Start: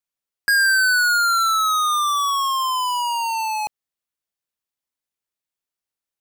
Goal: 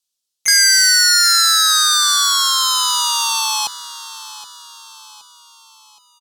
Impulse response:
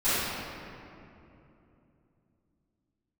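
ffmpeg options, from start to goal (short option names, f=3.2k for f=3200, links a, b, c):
-filter_complex "[0:a]asplit=3[a][b][c];[b]asetrate=55563,aresample=44100,atempo=0.793701,volume=-6dB[d];[c]asetrate=58866,aresample=44100,atempo=0.749154,volume=-10dB[e];[a][d][e]amix=inputs=3:normalize=0,aexciter=amount=6.8:drive=8.7:freq=3.2k,aemphasis=mode=reproduction:type=50fm,aecho=1:1:771|1542|2313|3084:0.158|0.0729|0.0335|0.0154,volume=-2dB"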